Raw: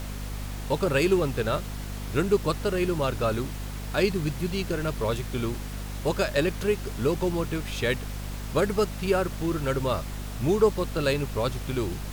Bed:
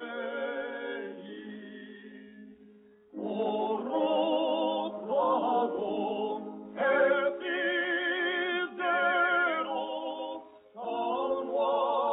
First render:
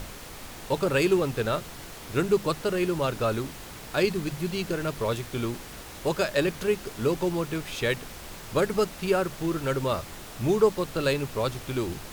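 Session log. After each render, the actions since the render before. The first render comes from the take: notches 50/100/150/200/250 Hz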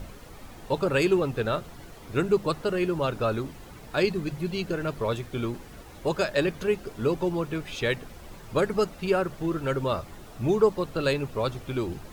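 denoiser 10 dB, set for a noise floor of -42 dBFS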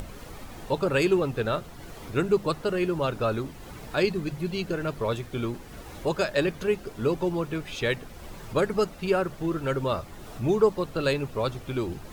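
upward compressor, threshold -34 dBFS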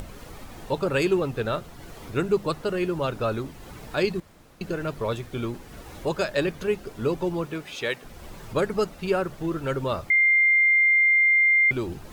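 4.2–4.61 room tone; 7.46–8.03 HPF 140 Hz -> 560 Hz 6 dB/oct; 10.1–11.71 bleep 2100 Hz -15.5 dBFS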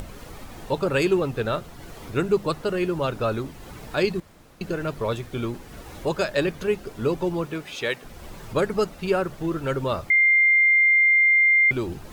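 gain +1.5 dB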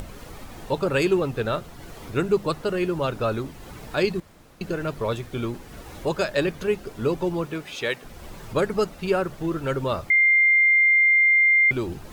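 nothing audible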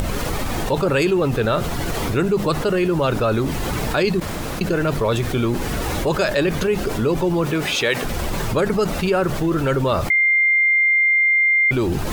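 fast leveller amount 70%

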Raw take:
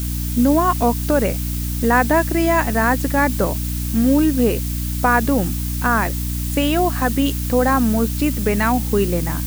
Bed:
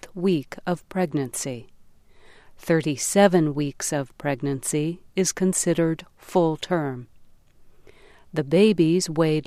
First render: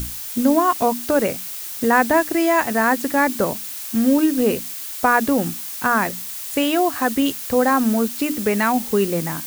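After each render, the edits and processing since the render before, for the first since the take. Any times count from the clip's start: notches 60/120/180/240/300 Hz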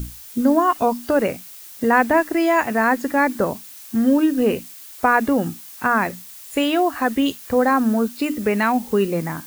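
noise print and reduce 9 dB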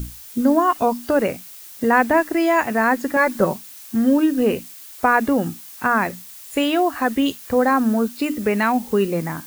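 3.16–3.56 comb 5.4 ms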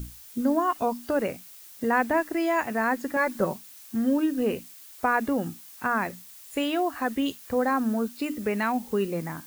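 gain -7.5 dB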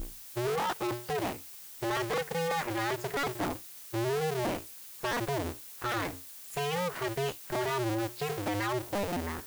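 cycle switcher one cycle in 2, inverted; soft clip -28 dBFS, distortion -8 dB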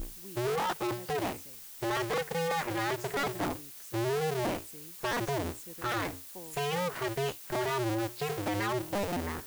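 add bed -28 dB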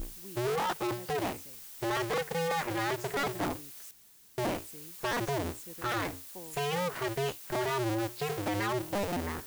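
3.91–4.38 room tone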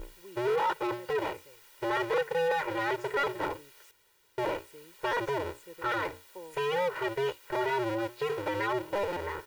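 tone controls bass -10 dB, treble -14 dB; comb 2.1 ms, depth 94%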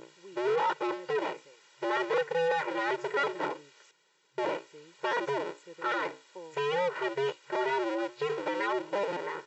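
FFT band-pass 130–7800 Hz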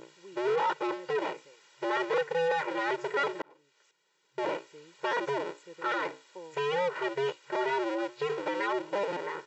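3.42–4.52 fade in

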